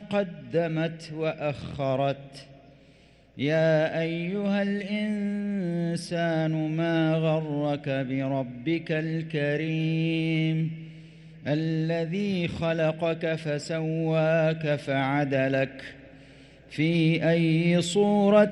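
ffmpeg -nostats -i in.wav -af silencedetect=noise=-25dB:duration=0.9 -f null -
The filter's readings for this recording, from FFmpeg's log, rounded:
silence_start: 2.12
silence_end: 3.41 | silence_duration: 1.29
silence_start: 15.65
silence_end: 16.78 | silence_duration: 1.14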